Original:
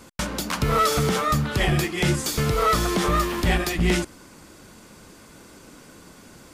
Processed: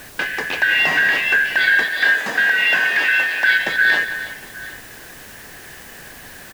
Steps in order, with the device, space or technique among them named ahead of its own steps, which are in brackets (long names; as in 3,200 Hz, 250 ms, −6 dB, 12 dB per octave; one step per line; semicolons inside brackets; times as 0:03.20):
split-band scrambled radio (band-splitting scrambler in four parts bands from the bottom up 4123; band-pass filter 330–3,200 Hz; white noise bed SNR 20 dB)
low-shelf EQ 240 Hz +3.5 dB
0:01.84–0:03.59: high-pass filter 330 Hz 6 dB per octave
tilt shelving filter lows +5 dB, about 1,100 Hz
multi-tap delay 181/325/761 ms −13/−14.5/−19.5 dB
level +7.5 dB